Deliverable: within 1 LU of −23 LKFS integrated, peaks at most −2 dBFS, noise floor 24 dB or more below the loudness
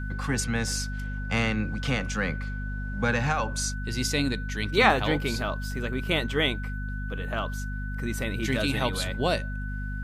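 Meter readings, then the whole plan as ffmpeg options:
mains hum 50 Hz; hum harmonics up to 250 Hz; level of the hum −30 dBFS; interfering tone 1,500 Hz; level of the tone −39 dBFS; integrated loudness −28.0 LKFS; sample peak −6.0 dBFS; target loudness −23.0 LKFS
→ -af "bandreject=frequency=50:width_type=h:width=4,bandreject=frequency=100:width_type=h:width=4,bandreject=frequency=150:width_type=h:width=4,bandreject=frequency=200:width_type=h:width=4,bandreject=frequency=250:width_type=h:width=4"
-af "bandreject=frequency=1500:width=30"
-af "volume=5dB,alimiter=limit=-2dB:level=0:latency=1"

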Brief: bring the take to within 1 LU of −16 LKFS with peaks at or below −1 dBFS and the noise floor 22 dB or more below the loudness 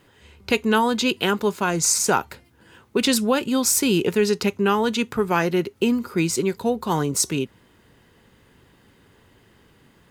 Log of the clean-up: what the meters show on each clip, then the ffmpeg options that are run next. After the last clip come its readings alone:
integrated loudness −21.5 LKFS; sample peak −7.0 dBFS; target loudness −16.0 LKFS
→ -af "volume=5.5dB"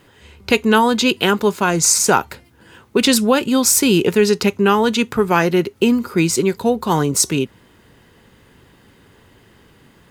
integrated loudness −16.0 LKFS; sample peak −1.5 dBFS; background noise floor −52 dBFS

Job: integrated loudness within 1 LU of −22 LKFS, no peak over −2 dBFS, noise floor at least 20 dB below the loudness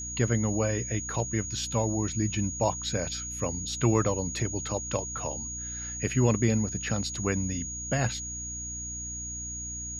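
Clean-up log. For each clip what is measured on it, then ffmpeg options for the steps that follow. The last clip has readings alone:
mains hum 60 Hz; hum harmonics up to 300 Hz; level of the hum −41 dBFS; interfering tone 6,700 Hz; level of the tone −35 dBFS; integrated loudness −29.5 LKFS; sample peak −10.5 dBFS; target loudness −22.0 LKFS
→ -af "bandreject=frequency=60:width_type=h:width=6,bandreject=frequency=120:width_type=h:width=6,bandreject=frequency=180:width_type=h:width=6,bandreject=frequency=240:width_type=h:width=6,bandreject=frequency=300:width_type=h:width=6"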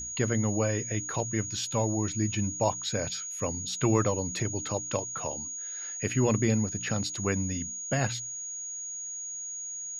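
mains hum none found; interfering tone 6,700 Hz; level of the tone −35 dBFS
→ -af "bandreject=frequency=6700:width=30"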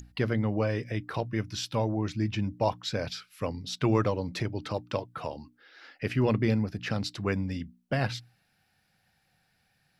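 interfering tone none found; integrated loudness −31.0 LKFS; sample peak −12.0 dBFS; target loudness −22.0 LKFS
→ -af "volume=9dB"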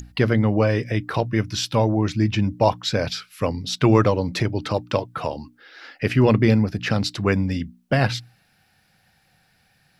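integrated loudness −22.0 LKFS; sample peak −3.0 dBFS; background noise floor −63 dBFS

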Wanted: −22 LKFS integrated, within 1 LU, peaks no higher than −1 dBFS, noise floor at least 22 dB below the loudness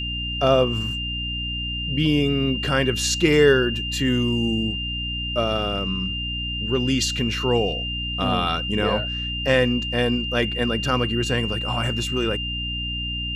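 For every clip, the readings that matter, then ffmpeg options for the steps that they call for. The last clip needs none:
mains hum 60 Hz; hum harmonics up to 300 Hz; level of the hum −28 dBFS; interfering tone 2,800 Hz; level of the tone −27 dBFS; integrated loudness −22.0 LKFS; sample peak −5.0 dBFS; target loudness −22.0 LKFS
→ -af "bandreject=frequency=60:width_type=h:width=4,bandreject=frequency=120:width_type=h:width=4,bandreject=frequency=180:width_type=h:width=4,bandreject=frequency=240:width_type=h:width=4,bandreject=frequency=300:width_type=h:width=4"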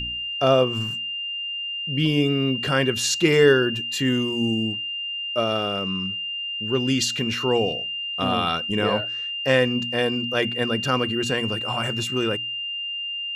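mains hum none found; interfering tone 2,800 Hz; level of the tone −27 dBFS
→ -af "bandreject=frequency=2800:width=30"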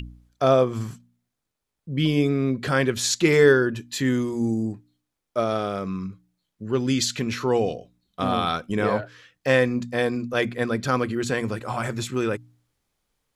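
interfering tone none found; integrated loudness −23.5 LKFS; sample peak −5.0 dBFS; target loudness −22.0 LKFS
→ -af "volume=1.5dB"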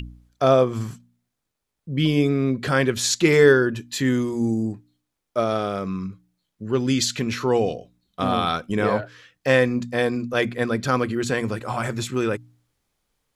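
integrated loudness −22.0 LKFS; sample peak −3.5 dBFS; background noise floor −80 dBFS

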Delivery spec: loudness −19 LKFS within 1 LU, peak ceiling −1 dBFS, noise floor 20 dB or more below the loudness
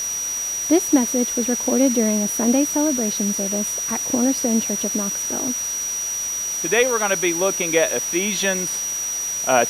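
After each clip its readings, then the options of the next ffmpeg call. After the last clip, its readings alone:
interfering tone 5,800 Hz; level of the tone −23 dBFS; background noise floor −26 dBFS; target noise floor −40 dBFS; integrated loudness −19.5 LKFS; sample peak −3.0 dBFS; target loudness −19.0 LKFS
→ -af "bandreject=frequency=5800:width=30"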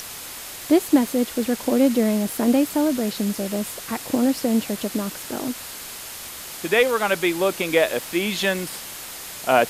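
interfering tone none found; background noise floor −36 dBFS; target noise floor −42 dBFS
→ -af "afftdn=noise_reduction=6:noise_floor=-36"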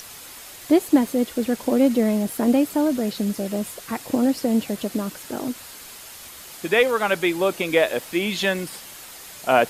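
background noise floor −41 dBFS; target noise floor −42 dBFS
→ -af "afftdn=noise_reduction=6:noise_floor=-41"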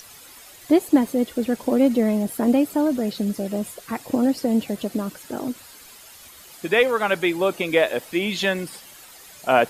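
background noise floor −46 dBFS; integrated loudness −22.5 LKFS; sample peak −3.0 dBFS; target loudness −19.0 LKFS
→ -af "volume=3.5dB,alimiter=limit=-1dB:level=0:latency=1"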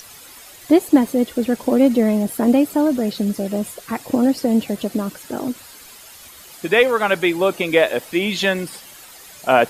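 integrated loudness −19.0 LKFS; sample peak −1.0 dBFS; background noise floor −42 dBFS

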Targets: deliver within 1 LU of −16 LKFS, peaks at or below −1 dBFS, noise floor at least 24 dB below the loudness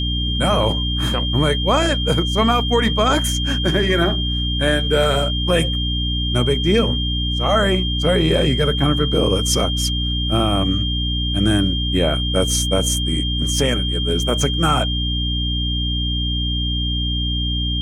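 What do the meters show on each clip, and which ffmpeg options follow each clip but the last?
mains hum 60 Hz; hum harmonics up to 300 Hz; level of the hum −20 dBFS; interfering tone 3,200 Hz; level of the tone −23 dBFS; integrated loudness −18.5 LKFS; sample peak −4.5 dBFS; target loudness −16.0 LKFS
→ -af "bandreject=frequency=60:width_type=h:width=4,bandreject=frequency=120:width_type=h:width=4,bandreject=frequency=180:width_type=h:width=4,bandreject=frequency=240:width_type=h:width=4,bandreject=frequency=300:width_type=h:width=4"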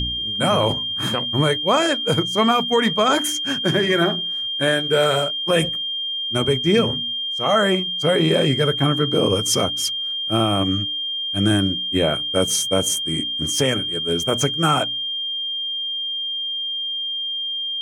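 mains hum none found; interfering tone 3,200 Hz; level of the tone −23 dBFS
→ -af "bandreject=frequency=3200:width=30"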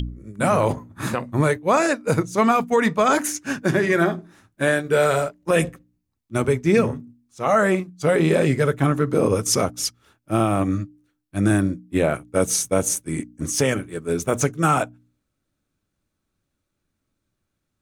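interfering tone none found; integrated loudness −21.5 LKFS; sample peak −7.0 dBFS; target loudness −16.0 LKFS
→ -af "volume=5.5dB"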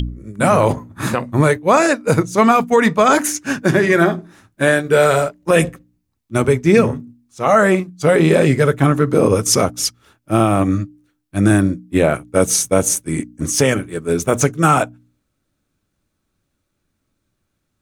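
integrated loudness −16.0 LKFS; sample peak −1.5 dBFS; background noise floor −72 dBFS

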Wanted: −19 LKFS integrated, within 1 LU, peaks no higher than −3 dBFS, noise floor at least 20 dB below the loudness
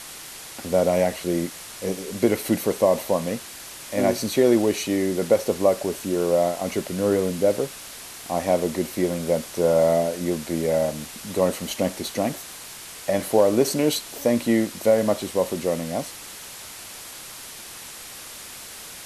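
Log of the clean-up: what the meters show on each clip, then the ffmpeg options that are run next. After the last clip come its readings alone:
background noise floor −40 dBFS; target noise floor −43 dBFS; integrated loudness −23.0 LKFS; sample peak −6.0 dBFS; target loudness −19.0 LKFS
→ -af "afftdn=noise_reduction=6:noise_floor=-40"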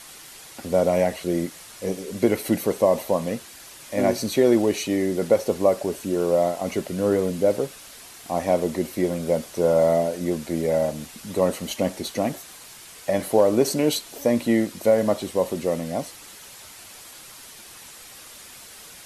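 background noise floor −44 dBFS; integrated loudness −23.5 LKFS; sample peak −6.0 dBFS; target loudness −19.0 LKFS
→ -af "volume=4.5dB,alimiter=limit=-3dB:level=0:latency=1"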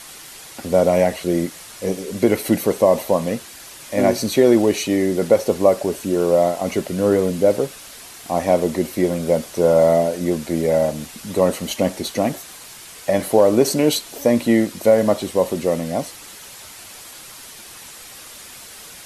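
integrated loudness −19.0 LKFS; sample peak −3.0 dBFS; background noise floor −40 dBFS

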